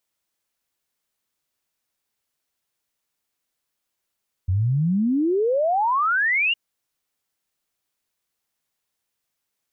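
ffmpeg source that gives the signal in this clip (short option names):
-f lavfi -i "aevalsrc='0.133*clip(min(t,2.06-t)/0.01,0,1)*sin(2*PI*87*2.06/log(2900/87)*(exp(log(2900/87)*t/2.06)-1))':d=2.06:s=44100"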